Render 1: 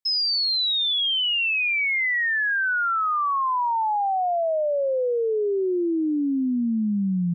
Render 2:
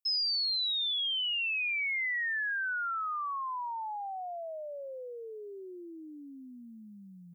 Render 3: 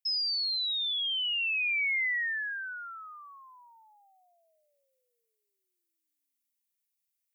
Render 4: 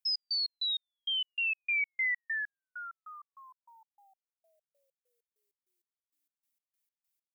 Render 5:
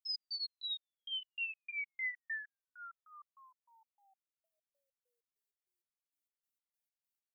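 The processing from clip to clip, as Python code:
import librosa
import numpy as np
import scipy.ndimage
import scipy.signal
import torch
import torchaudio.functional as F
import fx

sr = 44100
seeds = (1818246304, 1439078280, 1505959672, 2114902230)

y1 = np.diff(x, prepend=0.0)
y1 = fx.rider(y1, sr, range_db=4, speed_s=2.0)
y2 = fx.ladder_highpass(y1, sr, hz=1700.0, resonance_pct=45)
y2 = fx.high_shelf(y2, sr, hz=4400.0, db=6.0)
y2 = y2 * librosa.db_to_amplitude(4.5)
y3 = fx.step_gate(y2, sr, bpm=98, pattern='x.x.x..x.x.', floor_db=-60.0, edge_ms=4.5)
y4 = fx.comb_cascade(y3, sr, direction='falling', hz=1.5)
y4 = y4 * librosa.db_to_amplitude(-4.5)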